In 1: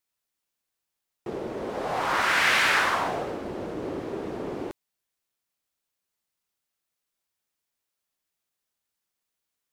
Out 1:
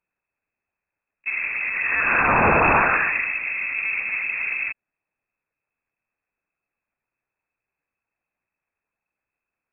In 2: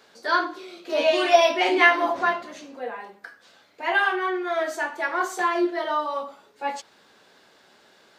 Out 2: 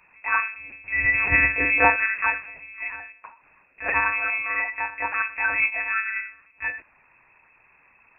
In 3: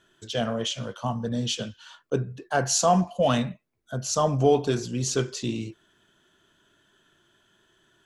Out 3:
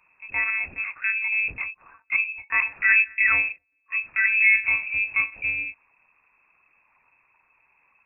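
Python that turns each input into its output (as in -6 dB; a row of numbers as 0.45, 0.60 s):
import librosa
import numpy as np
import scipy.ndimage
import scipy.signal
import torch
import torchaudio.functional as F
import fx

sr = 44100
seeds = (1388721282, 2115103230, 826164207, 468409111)

y = fx.low_shelf(x, sr, hz=95.0, db=7.5)
y = fx.lpc_monotone(y, sr, seeds[0], pitch_hz=210.0, order=8)
y = fx.freq_invert(y, sr, carrier_hz=2600)
y = y * 10.0 ** (-26 / 20.0) / np.sqrt(np.mean(np.square(y)))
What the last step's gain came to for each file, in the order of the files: +5.5, -1.5, +0.5 dB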